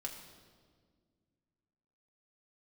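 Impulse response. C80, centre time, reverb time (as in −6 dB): 7.5 dB, 34 ms, 1.8 s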